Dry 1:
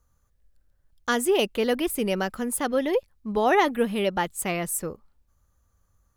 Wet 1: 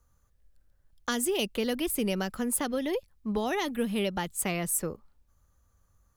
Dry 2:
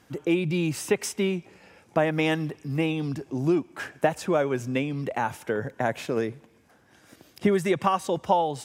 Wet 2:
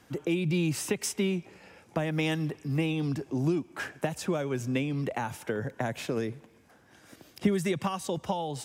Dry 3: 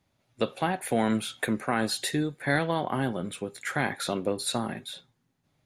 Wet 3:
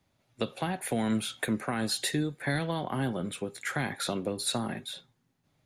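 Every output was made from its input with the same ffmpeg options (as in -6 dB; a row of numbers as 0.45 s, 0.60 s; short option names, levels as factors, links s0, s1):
-filter_complex "[0:a]acrossover=split=240|3000[s0][s1][s2];[s1]acompressor=threshold=0.0316:ratio=6[s3];[s0][s3][s2]amix=inputs=3:normalize=0"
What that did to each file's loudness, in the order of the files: -5.0 LU, -4.0 LU, -2.5 LU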